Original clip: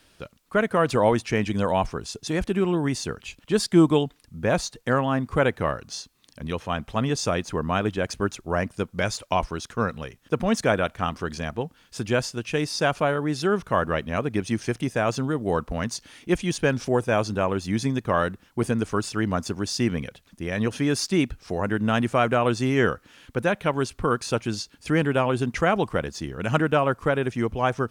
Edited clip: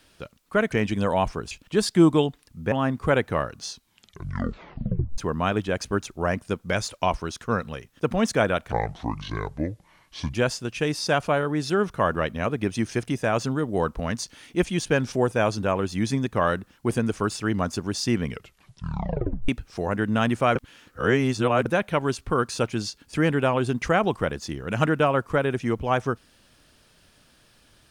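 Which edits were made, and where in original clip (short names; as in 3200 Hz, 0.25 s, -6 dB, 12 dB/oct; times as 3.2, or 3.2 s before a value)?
0.72–1.3 cut
2.09–3.28 cut
4.49–5.01 cut
5.98 tape stop 1.49 s
11.01–12.06 speed 65%
19.95 tape stop 1.26 s
22.28–23.38 reverse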